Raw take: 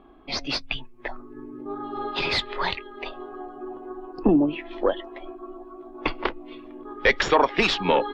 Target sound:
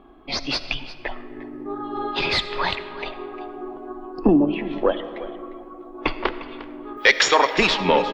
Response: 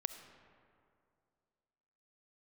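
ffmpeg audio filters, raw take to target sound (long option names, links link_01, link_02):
-filter_complex "[0:a]asettb=1/sr,asplit=3[link_01][link_02][link_03];[link_01]atrim=end=6.974[link_04];[link_02]atrim=start=6.97:end=7.55,asetpts=PTS-STARTPTS,afade=type=in:duration=0.004:curve=qsin,afade=type=out:start_time=0.576:duration=0.004:curve=qsin,aemphasis=mode=production:type=riaa[link_05];[link_03]atrim=start=7.546[link_06];[link_04][link_05]acrossfade=duration=0.004:curve1=hsin:curve2=qsin[link_07];[link_07][link_06]acrossfade=duration=0.004:curve1=qsin:curve2=hsin,aecho=1:1:353:0.15,asplit=2[link_08][link_09];[1:a]atrim=start_sample=2205[link_10];[link_09][link_10]afir=irnorm=-1:irlink=0,volume=7.5dB[link_11];[link_08][link_11]amix=inputs=2:normalize=0,volume=-7dB"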